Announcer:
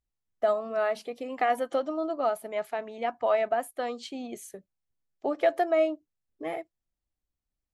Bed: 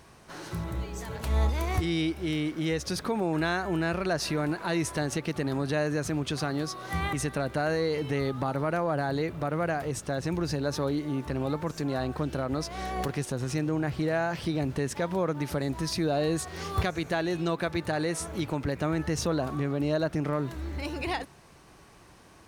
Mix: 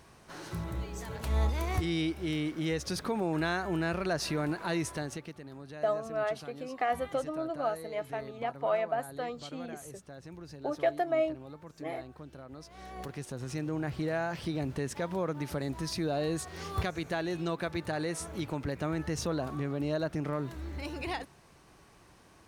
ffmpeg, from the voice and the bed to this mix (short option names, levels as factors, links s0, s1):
-filter_complex "[0:a]adelay=5400,volume=0.596[s0];[1:a]volume=2.99,afade=t=out:st=4.72:d=0.67:silence=0.199526,afade=t=in:st=12.57:d=1.34:silence=0.237137[s1];[s0][s1]amix=inputs=2:normalize=0"